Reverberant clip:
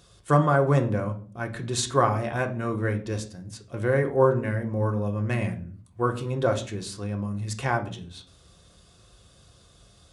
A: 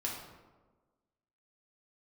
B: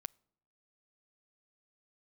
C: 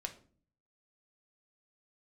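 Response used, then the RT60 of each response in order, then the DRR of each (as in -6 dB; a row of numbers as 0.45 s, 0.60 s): C; 1.3 s, no single decay rate, 0.45 s; -3.5 dB, 15.0 dB, 4.0 dB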